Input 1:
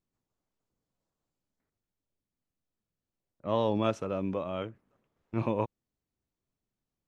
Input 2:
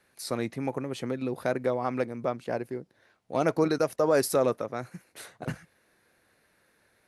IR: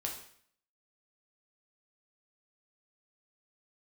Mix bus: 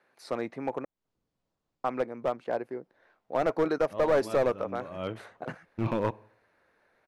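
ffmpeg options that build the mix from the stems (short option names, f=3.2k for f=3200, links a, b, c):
-filter_complex "[0:a]lowpass=5.2k,adelay=450,volume=2.5dB,asplit=2[a][b];[b]volume=-18dB[c];[1:a]bandpass=f=810:t=q:w=0.66:csg=0,volume=2dB,asplit=3[d][e][f];[d]atrim=end=0.85,asetpts=PTS-STARTPTS,afade=t=out:st=0.846:d=0.004:c=hsin[g];[e]atrim=start=0.85:end=1.84,asetpts=PTS-STARTPTS,volume=0[h];[f]atrim=start=1.84,asetpts=PTS-STARTPTS,afade=t=in:d=0.004:c=hsin[i];[g][h][i]concat=n=3:v=0:a=1,asplit=2[j][k];[k]apad=whole_len=331661[l];[a][l]sidechaincompress=threshold=-51dB:ratio=5:attack=16:release=182[m];[2:a]atrim=start_sample=2205[n];[c][n]afir=irnorm=-1:irlink=0[o];[m][j][o]amix=inputs=3:normalize=0,aeval=exprs='clip(val(0),-1,0.0794)':c=same"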